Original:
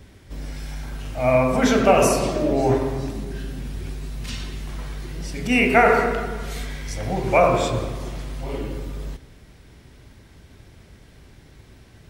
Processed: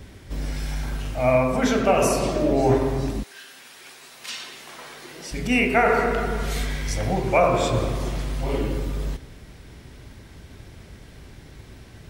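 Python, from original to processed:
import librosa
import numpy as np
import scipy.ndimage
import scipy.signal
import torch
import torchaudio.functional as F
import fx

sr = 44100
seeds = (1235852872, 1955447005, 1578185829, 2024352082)

y = fx.highpass(x, sr, hz=fx.line((3.22, 1400.0), (5.31, 360.0)), slope=12, at=(3.22, 5.31), fade=0.02)
y = fx.rider(y, sr, range_db=4, speed_s=0.5)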